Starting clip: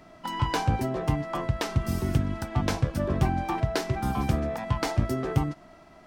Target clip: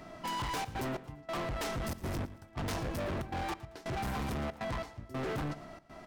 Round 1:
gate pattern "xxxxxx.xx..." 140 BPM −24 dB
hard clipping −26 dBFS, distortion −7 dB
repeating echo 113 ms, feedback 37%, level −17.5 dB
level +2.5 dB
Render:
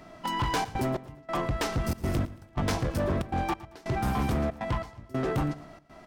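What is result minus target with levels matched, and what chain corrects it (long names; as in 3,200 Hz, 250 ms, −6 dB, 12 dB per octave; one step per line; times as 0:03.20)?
hard clipping: distortion −5 dB
gate pattern "xxxxxx.xx..." 140 BPM −24 dB
hard clipping −36.5 dBFS, distortion −2 dB
repeating echo 113 ms, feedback 37%, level −17.5 dB
level +2.5 dB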